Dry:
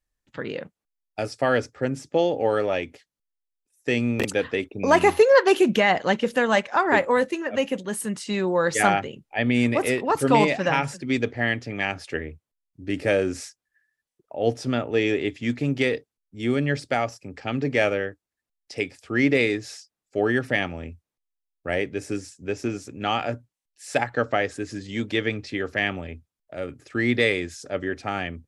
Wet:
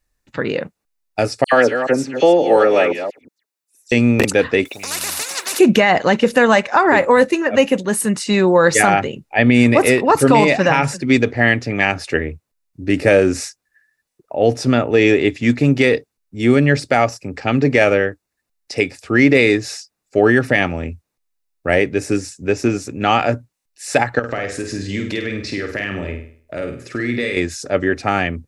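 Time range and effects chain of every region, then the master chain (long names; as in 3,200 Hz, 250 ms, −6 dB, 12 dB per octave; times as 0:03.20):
0:01.44–0:03.92: delay that plays each chunk backwards 176 ms, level −9 dB + high-pass filter 240 Hz + all-pass dispersion lows, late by 83 ms, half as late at 2,500 Hz
0:04.65–0:05.59: first difference + every bin compressed towards the loudest bin 10 to 1
0:24.19–0:27.37: parametric band 770 Hz −8.5 dB 0.23 octaves + downward compressor 4 to 1, threshold −31 dBFS + flutter between parallel walls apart 8.6 metres, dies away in 0.49 s
whole clip: notch filter 3,200 Hz, Q 9.5; boost into a limiter +11.5 dB; level −1 dB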